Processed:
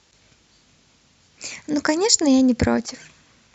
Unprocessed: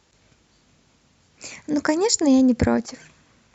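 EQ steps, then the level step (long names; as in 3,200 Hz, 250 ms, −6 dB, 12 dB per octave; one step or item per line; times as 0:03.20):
high-frequency loss of the air 66 metres
high-shelf EQ 2,700 Hz +11 dB
0.0 dB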